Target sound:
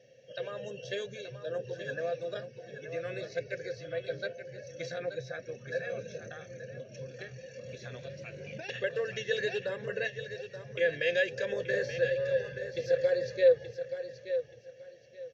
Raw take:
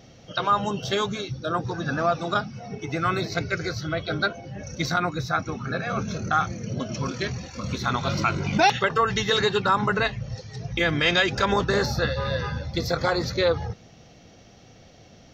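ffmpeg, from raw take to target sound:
-filter_complex "[0:a]asplit=3[s0][s1][s2];[s0]bandpass=f=530:t=q:w=8,volume=1[s3];[s1]bandpass=f=1840:t=q:w=8,volume=0.501[s4];[s2]bandpass=f=2480:t=q:w=8,volume=0.355[s5];[s3][s4][s5]amix=inputs=3:normalize=0,equalizer=f=130:w=4.2:g=14,bandreject=f=1300:w=12,aecho=1:1:1.8:0.59,aecho=1:1:878|1756|2634:0.316|0.0727|0.0167,asettb=1/sr,asplit=3[s6][s7][s8];[s6]atrim=end=6.264[s9];[s7]atrim=start=6.26:end=8.69,asetpts=PTS-STARTPTS,afade=t=in:d=0.004:c=qsin,afade=t=out:st=2.426:d=0.004:c=qsin,acrossover=split=180[s10][s11];[s11]acompressor=threshold=0.01:ratio=6[s12];[s10][s12]amix=inputs=2:normalize=0[s13];[s8]atrim=start=8.686[s14];[s9][s13]acrossfade=d=0.004:c1=hsin:c2=qsin[s15];[s15][s14]acrossfade=d=0.004:c1=qsin:c2=hsin,equalizer=f=250:t=o:w=0.67:g=6,equalizer=f=630:t=o:w=0.67:g=-4,equalizer=f=6300:t=o:w=0.67:g=11"

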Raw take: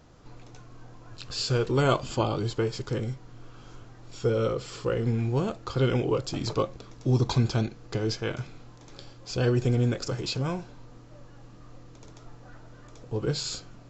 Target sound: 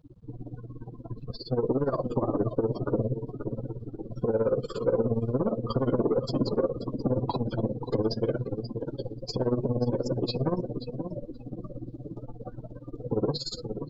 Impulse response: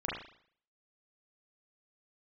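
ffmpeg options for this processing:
-af "aeval=exprs='(tanh(56.2*val(0)+0.35)-tanh(0.35))/56.2':c=same,acompressor=threshold=0.0112:ratio=8,asetnsamples=n=441:p=0,asendcmd='4.28 highshelf g -2',highshelf=f=3100:g=-10.5,aecho=1:1:536|1072|1608|2144|2680|3216:0.422|0.219|0.114|0.0593|0.0308|0.016,tremolo=f=17:d=0.79,acrusher=bits=9:mix=0:aa=0.000001,acontrast=67,afftdn=nr=33:nf=-40,equalizer=f=125:t=o:w=1:g=6,equalizer=f=250:t=o:w=1:g=11,equalizer=f=500:t=o:w=1:g=11,equalizer=f=1000:t=o:w=1:g=10,equalizer=f=2000:t=o:w=1:g=-3,equalizer=f=4000:t=o:w=1:g=10"

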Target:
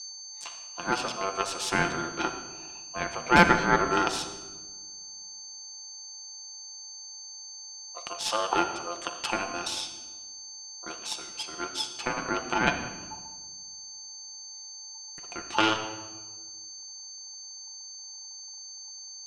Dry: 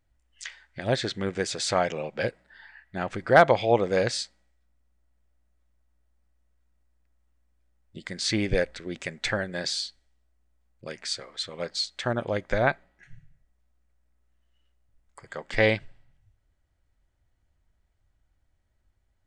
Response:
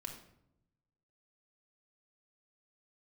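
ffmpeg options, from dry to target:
-filter_complex "[0:a]aeval=exprs='0.596*(cos(1*acos(clip(val(0)/0.596,-1,1)))-cos(1*PI/2))+0.133*(cos(4*acos(clip(val(0)/0.596,-1,1)))-cos(4*PI/2))+0.0133*(cos(8*acos(clip(val(0)/0.596,-1,1)))-cos(8*PI/2))':c=same,aeval=exprs='val(0)+0.0178*sin(2*PI*5400*n/s)':c=same,aeval=exprs='val(0)*sin(2*PI*870*n/s)':c=same,asplit=2[s0][s1];[1:a]atrim=start_sample=2205,asetrate=23373,aresample=44100,lowshelf=f=88:g=-11.5[s2];[s1][s2]afir=irnorm=-1:irlink=0,volume=1.26[s3];[s0][s3]amix=inputs=2:normalize=0,volume=0.447"

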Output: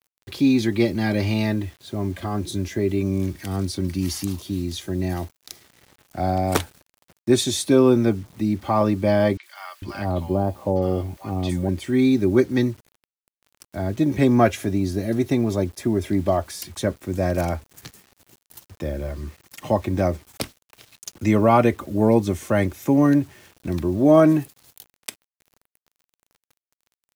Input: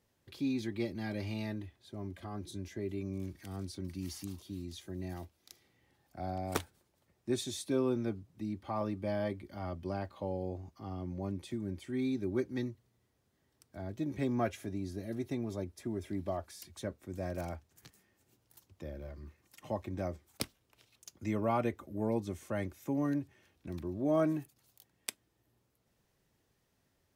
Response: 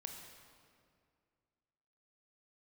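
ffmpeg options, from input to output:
-filter_complex "[0:a]acrusher=bits=10:mix=0:aa=0.000001,asettb=1/sr,asplit=3[s0][s1][s2];[s0]atrim=end=9.374[s3];[s1]atrim=start=9.37:end=11.69,asetpts=PTS-STARTPTS,afade=t=in:d=0.004:c=qsin,afade=t=out:st=2.316:d=0.004:c=qsin,acrossover=split=1100|6000[s4][s5][s6];[s6]adelay=60[s7];[s4]adelay=450[s8];[s8][s5][s7]amix=inputs=3:normalize=0,atrim=end_sample=102312[s9];[s2]atrim=start=11.686[s10];[s3][s9]acrossfade=d=0.004:c1=hsin:c2=qsin[s11];[s11][s10]acrossfade=d=0.004:c1=qsin:c2=hsin,alimiter=level_in=10:limit=0.891:release=50:level=0:latency=1,volume=0.631"

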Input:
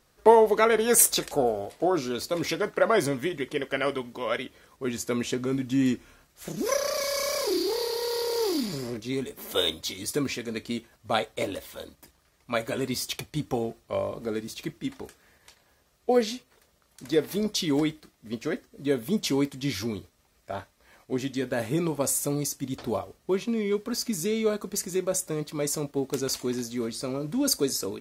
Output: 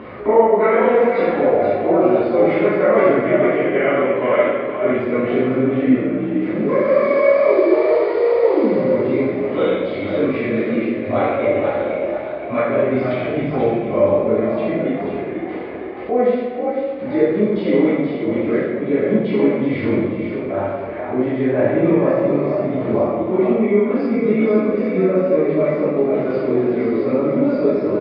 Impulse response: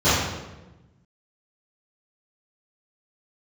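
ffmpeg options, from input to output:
-filter_complex "[0:a]acompressor=threshold=0.00562:ratio=2,highpass=140,equalizer=f=210:t=q:w=4:g=4,equalizer=f=340:t=q:w=4:g=3,equalizer=f=550:t=q:w=4:g=8,equalizer=f=1200:t=q:w=4:g=6,equalizer=f=2100:t=q:w=4:g=7,lowpass=f=2500:w=0.5412,lowpass=f=2500:w=1.3066,asplit=5[s0][s1][s2][s3][s4];[s1]adelay=480,afreqshift=53,volume=0.473[s5];[s2]adelay=960,afreqshift=106,volume=0.166[s6];[s3]adelay=1440,afreqshift=159,volume=0.0582[s7];[s4]adelay=1920,afreqshift=212,volume=0.0202[s8];[s0][s5][s6][s7][s8]amix=inputs=5:normalize=0[s9];[1:a]atrim=start_sample=2205,asetrate=30870,aresample=44100[s10];[s9][s10]afir=irnorm=-1:irlink=0,acompressor=mode=upward:threshold=0.2:ratio=2.5,volume=0.422"

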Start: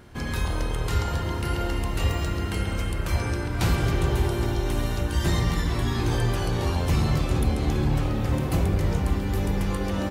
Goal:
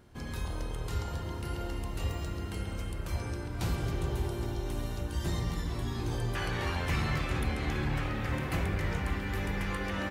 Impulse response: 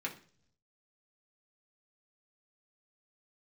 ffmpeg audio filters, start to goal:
-af "asetnsamples=n=441:p=0,asendcmd='6.35 equalizer g 12',equalizer=f=1900:t=o:w=1.5:g=-3,volume=0.355"

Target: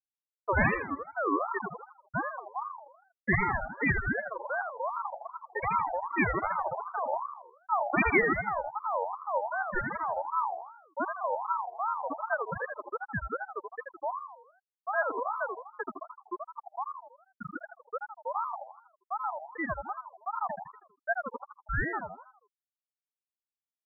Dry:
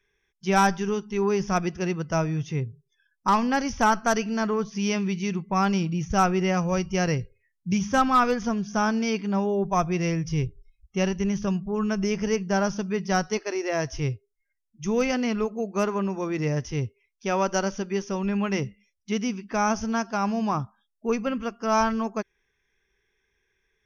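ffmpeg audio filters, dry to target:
-filter_complex "[0:a]afftfilt=real='re*gte(hypot(re,im),0.631)':imag='im*gte(hypot(re,im),0.631)':win_size=1024:overlap=0.75,asplit=7[s0][s1][s2][s3][s4][s5][s6];[s1]adelay=80,afreqshift=-88,volume=0.562[s7];[s2]adelay=160,afreqshift=-176,volume=0.282[s8];[s3]adelay=240,afreqshift=-264,volume=0.141[s9];[s4]adelay=320,afreqshift=-352,volume=0.07[s10];[s5]adelay=400,afreqshift=-440,volume=0.0351[s11];[s6]adelay=480,afreqshift=-528,volume=0.0176[s12];[s0][s7][s8][s9][s10][s11][s12]amix=inputs=7:normalize=0,aeval=exprs='val(0)*sin(2*PI*930*n/s+930*0.25/2.6*sin(2*PI*2.6*n/s))':c=same"

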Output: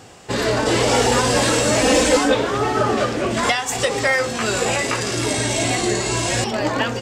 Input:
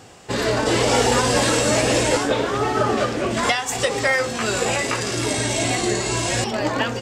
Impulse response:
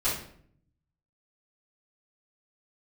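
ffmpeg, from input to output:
-filter_complex "[0:a]asettb=1/sr,asplit=3[s0][s1][s2];[s0]atrim=end=1.814[s3];[s1]atrim=start=1.81:end=2.35,asetpts=PTS-STARTPTS,afade=t=in:d=0.004:c=qsin,afade=t=out:st=0.536:d=0.004:c=qsin,aecho=1:1:3.9:0.88,atrim=end_sample=23814[s4];[s2]atrim=start=2.346[s5];[s3][s4]acrossfade=d=0.004:c1=hsin:c2=qsin[s6];[s6][s5]acrossfade=d=0.004:c1=qsin:c2=hsin,asplit=2[s7][s8];[s8]acontrast=77,volume=0.841[s9];[s7][s9]amix=inputs=2:normalize=0,volume=0.422"

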